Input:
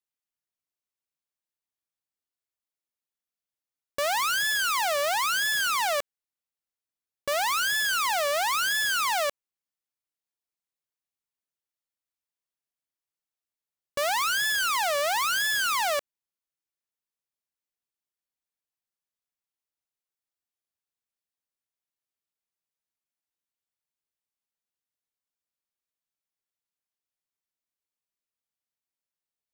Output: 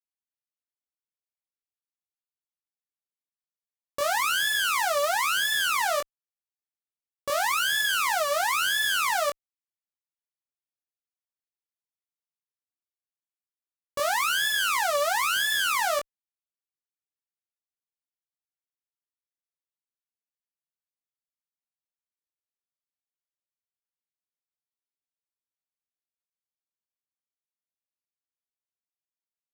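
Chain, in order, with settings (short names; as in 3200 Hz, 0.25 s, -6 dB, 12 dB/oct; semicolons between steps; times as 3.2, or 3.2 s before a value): added harmonics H 7 -15 dB, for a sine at -20.5 dBFS; chorus 2.1 Hz, delay 18 ms, depth 4.5 ms; gain +3 dB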